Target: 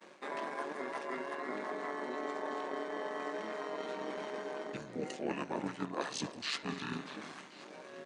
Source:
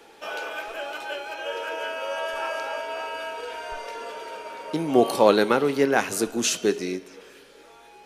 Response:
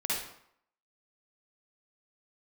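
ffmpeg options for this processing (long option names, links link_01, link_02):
-filter_complex "[0:a]agate=range=-33dB:threshold=-46dB:ratio=3:detection=peak,asplit=2[link_01][link_02];[link_02]adelay=300,highpass=300,lowpass=3400,asoftclip=type=hard:threshold=-13.5dB,volume=-22dB[link_03];[link_01][link_03]amix=inputs=2:normalize=0,tremolo=f=210:d=0.667,asetrate=29433,aresample=44100,atempo=1.49831,highpass=420,areverse,acompressor=threshold=-45dB:ratio=4,areverse,asplit=2[link_04][link_05];[link_05]asetrate=29433,aresample=44100,atempo=1.49831,volume=-3dB[link_06];[link_04][link_06]amix=inputs=2:normalize=0,asplit=2[link_07][link_08];[link_08]aecho=0:1:1077:0.0841[link_09];[link_07][link_09]amix=inputs=2:normalize=0,volume=5.5dB"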